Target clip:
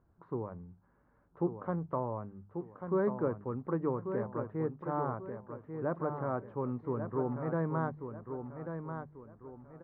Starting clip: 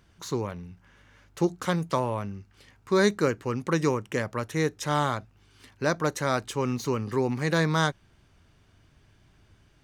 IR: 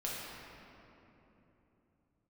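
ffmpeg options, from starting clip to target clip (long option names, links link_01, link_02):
-filter_complex "[0:a]lowpass=frequency=1200:width=0.5412,lowpass=frequency=1200:width=1.3066,bandreject=frequency=50:width_type=h:width=6,bandreject=frequency=100:width_type=h:width=6,bandreject=frequency=150:width_type=h:width=6,bandreject=frequency=200:width_type=h:width=6,asplit=2[link_01][link_02];[link_02]aecho=0:1:1140|2280|3420|4560:0.422|0.152|0.0547|0.0197[link_03];[link_01][link_03]amix=inputs=2:normalize=0,volume=-7.5dB"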